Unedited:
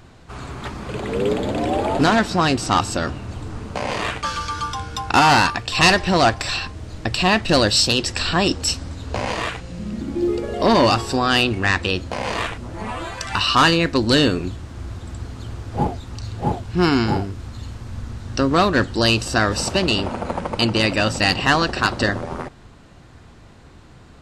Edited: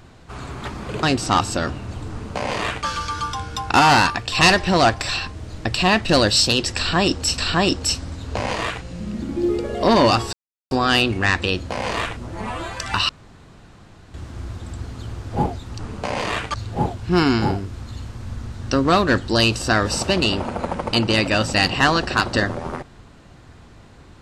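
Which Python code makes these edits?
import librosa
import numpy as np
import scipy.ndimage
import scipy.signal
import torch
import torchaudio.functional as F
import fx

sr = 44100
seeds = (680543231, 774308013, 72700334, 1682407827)

y = fx.edit(x, sr, fx.cut(start_s=1.03, length_s=1.4),
    fx.duplicate(start_s=3.51, length_s=0.75, to_s=16.2),
    fx.repeat(start_s=8.17, length_s=0.61, count=2),
    fx.insert_silence(at_s=11.12, length_s=0.38),
    fx.room_tone_fill(start_s=13.5, length_s=1.05), tone=tone)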